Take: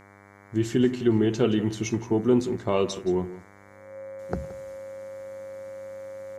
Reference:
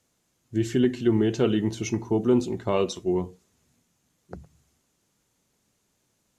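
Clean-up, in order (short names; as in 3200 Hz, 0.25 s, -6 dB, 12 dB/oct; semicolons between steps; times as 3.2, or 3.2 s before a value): de-hum 99.8 Hz, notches 23; notch 540 Hz, Q 30; inverse comb 0.172 s -16 dB; gain correction -10 dB, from 4.19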